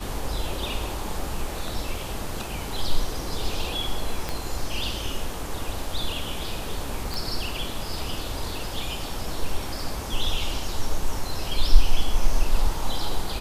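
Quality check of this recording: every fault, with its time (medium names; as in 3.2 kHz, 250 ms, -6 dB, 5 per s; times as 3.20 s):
4.29 s: pop -13 dBFS
7.14 s: pop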